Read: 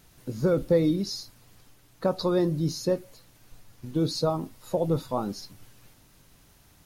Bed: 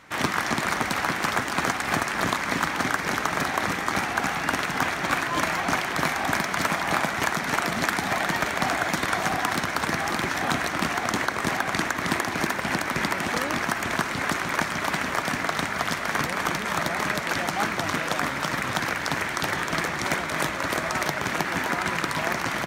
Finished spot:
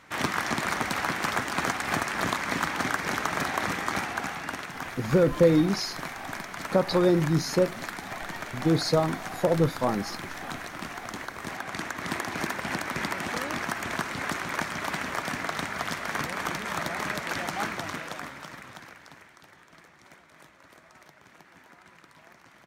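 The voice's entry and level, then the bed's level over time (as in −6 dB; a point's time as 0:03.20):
4.70 s, +2.5 dB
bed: 0:03.87 −3 dB
0:04.75 −11.5 dB
0:11.34 −11.5 dB
0:12.33 −5 dB
0:17.66 −5 dB
0:19.47 −27.5 dB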